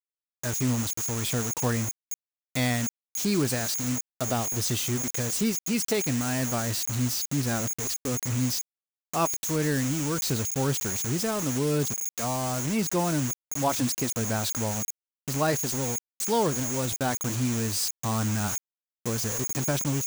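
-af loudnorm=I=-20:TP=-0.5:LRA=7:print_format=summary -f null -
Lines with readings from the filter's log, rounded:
Input Integrated:    -27.4 LUFS
Input True Peak:     -12.6 dBTP
Input LRA:             1.1 LU
Input Threshold:     -37.4 LUFS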